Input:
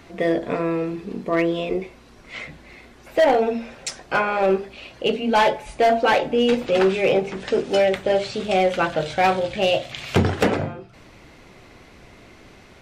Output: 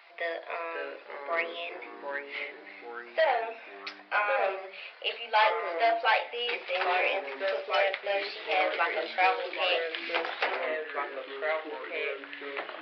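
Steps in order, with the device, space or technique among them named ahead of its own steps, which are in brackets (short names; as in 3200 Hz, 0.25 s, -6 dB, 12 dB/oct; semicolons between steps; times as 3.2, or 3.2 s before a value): 3.22–4.44 air absorption 88 m; musical greeting card (downsampling 11025 Hz; HPF 650 Hz 24 dB/oct; bell 2300 Hz +5 dB 0.49 oct); echoes that change speed 0.504 s, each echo -3 st, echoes 3, each echo -6 dB; gain -6 dB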